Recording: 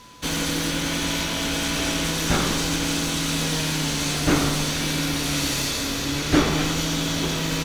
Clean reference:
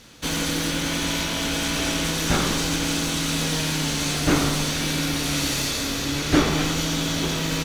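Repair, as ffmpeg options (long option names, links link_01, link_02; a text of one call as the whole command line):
ffmpeg -i in.wav -af "bandreject=frequency=1000:width=30" out.wav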